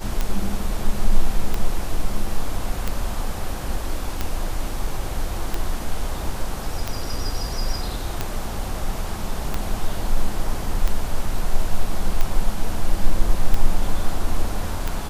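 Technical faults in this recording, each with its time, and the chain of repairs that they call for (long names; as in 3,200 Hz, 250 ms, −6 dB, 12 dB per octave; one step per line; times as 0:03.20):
scratch tick 45 rpm −9 dBFS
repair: click removal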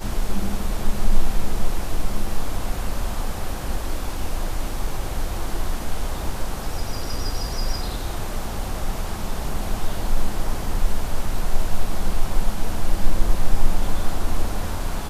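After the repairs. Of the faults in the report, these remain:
none of them is left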